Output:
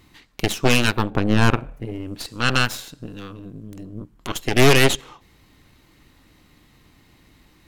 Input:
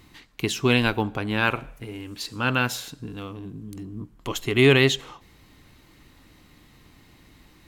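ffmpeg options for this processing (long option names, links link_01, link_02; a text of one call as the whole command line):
ffmpeg -i in.wav -filter_complex "[0:a]aeval=exprs='0.668*(cos(1*acos(clip(val(0)/0.668,-1,1)))-cos(1*PI/2))+0.211*(cos(8*acos(clip(val(0)/0.668,-1,1)))-cos(8*PI/2))':channel_layout=same,asettb=1/sr,asplit=3[link_01][link_02][link_03];[link_01]atrim=end=1.104[link_04];[link_02]atrim=start=1.1:end=2.19,asetpts=PTS-STARTPTS,afade=type=in:duration=0.004:curve=qsin,afade=type=out:start_time=1.086:duration=0.004:curve=qsin,tiltshelf=frequency=1300:gain=7[link_05];[link_03]atrim=start=2.186[link_06];[link_04][link_05]acrossfade=duration=0.004:curve1=hsin:curve2=qsin[link_07];[link_07][link_06]acrossfade=duration=0.004:curve1=qsin:curve2=hsin,volume=-1dB" out.wav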